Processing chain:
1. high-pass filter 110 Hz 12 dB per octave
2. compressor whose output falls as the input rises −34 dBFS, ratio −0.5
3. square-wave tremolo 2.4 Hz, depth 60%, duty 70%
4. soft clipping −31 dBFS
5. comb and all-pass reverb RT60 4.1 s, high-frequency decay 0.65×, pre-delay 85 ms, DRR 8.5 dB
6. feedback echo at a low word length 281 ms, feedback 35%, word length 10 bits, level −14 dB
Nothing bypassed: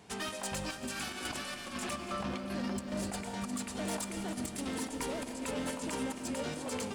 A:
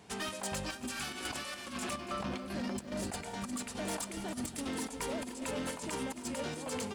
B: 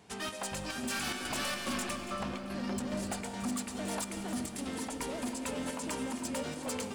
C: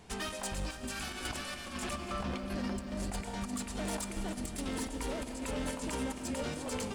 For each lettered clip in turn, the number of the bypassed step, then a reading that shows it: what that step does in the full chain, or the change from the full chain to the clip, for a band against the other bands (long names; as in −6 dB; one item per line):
5, change in crest factor −2.0 dB
2, change in momentary loudness spread +2 LU
1, 125 Hz band +3.0 dB